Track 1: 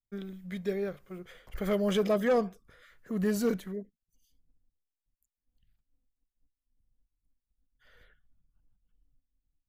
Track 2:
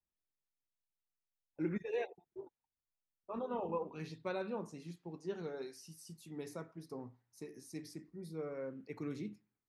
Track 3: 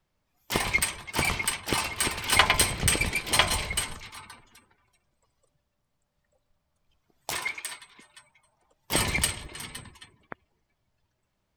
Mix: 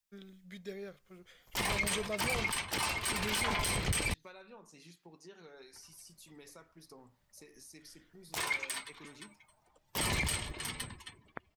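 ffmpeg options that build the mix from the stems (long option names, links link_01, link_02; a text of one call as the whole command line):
ffmpeg -i stem1.wav -i stem2.wav -i stem3.wav -filter_complex "[0:a]equalizer=frequency=5400:width_type=o:width=2.6:gain=10.5,acontrast=32,volume=-17.5dB[link_01];[1:a]tiltshelf=frequency=860:gain=-7.5,acompressor=threshold=-55dB:ratio=3,volume=1.5dB[link_02];[2:a]alimiter=limit=-15dB:level=0:latency=1:release=101,adelay=1050,volume=-0.5dB,asplit=3[link_03][link_04][link_05];[link_03]atrim=end=4.14,asetpts=PTS-STARTPTS,afade=type=out:start_time=4.136:duration=0.004:curve=hsin[link_06];[link_04]atrim=start=4.14:end=5.73,asetpts=PTS-STARTPTS,volume=0[link_07];[link_05]atrim=start=5.73,asetpts=PTS-STARTPTS,afade=type=in:duration=0.004:curve=hsin[link_08];[link_06][link_07][link_08]concat=n=3:v=0:a=1[link_09];[link_01][link_02][link_09]amix=inputs=3:normalize=0,alimiter=limit=-23dB:level=0:latency=1:release=29" out.wav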